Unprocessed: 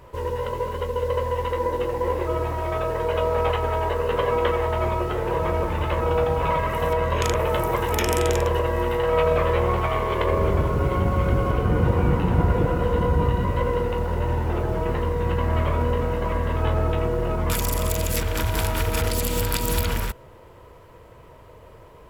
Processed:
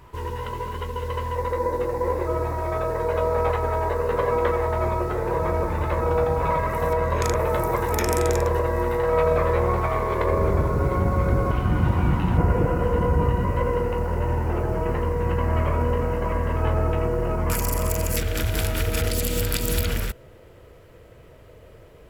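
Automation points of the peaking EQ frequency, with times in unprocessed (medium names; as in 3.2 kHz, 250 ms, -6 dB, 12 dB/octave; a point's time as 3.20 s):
peaking EQ -13 dB 0.39 oct
540 Hz
from 1.35 s 3 kHz
from 11.51 s 470 Hz
from 12.37 s 3.6 kHz
from 18.17 s 980 Hz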